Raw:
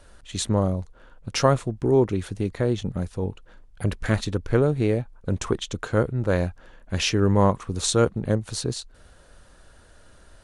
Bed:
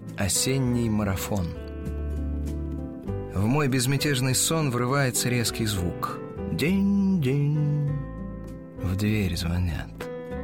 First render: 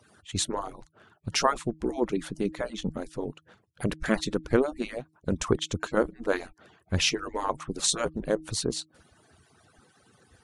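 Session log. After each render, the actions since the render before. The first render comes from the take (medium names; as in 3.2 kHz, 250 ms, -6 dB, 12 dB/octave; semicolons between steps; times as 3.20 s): harmonic-percussive separation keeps percussive; de-hum 157.1 Hz, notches 2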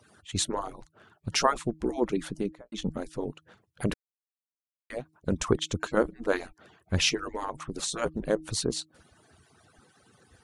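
2.31–2.72 s: studio fade out; 3.94–4.90 s: mute; 7.22–8.02 s: compression, threshold -28 dBFS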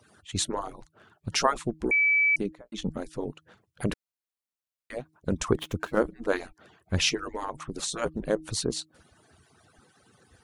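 1.91–2.36 s: bleep 2.3 kHz -19 dBFS; 5.53–6.00 s: median filter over 9 samples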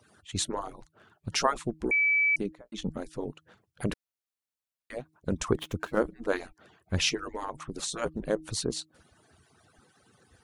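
trim -2 dB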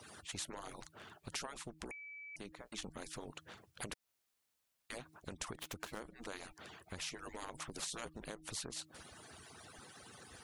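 compression 12:1, threshold -35 dBFS, peak gain reduction 16.5 dB; spectrum-flattening compressor 2:1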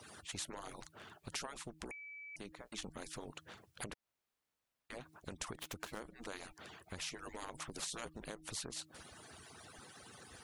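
3.84–5.01 s: treble shelf 3.2 kHz -10 dB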